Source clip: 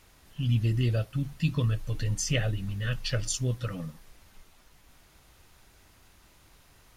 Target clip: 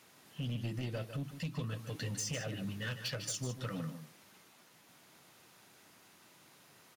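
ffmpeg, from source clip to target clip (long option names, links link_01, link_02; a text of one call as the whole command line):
ffmpeg -i in.wav -filter_complex "[0:a]highpass=frequency=140:width=0.5412,highpass=frequency=140:width=1.3066,acompressor=threshold=-32dB:ratio=8,asoftclip=type=hard:threshold=-32.5dB,asplit=2[link_01][link_02];[link_02]aecho=0:1:152:0.316[link_03];[link_01][link_03]amix=inputs=2:normalize=0,volume=-1dB" out.wav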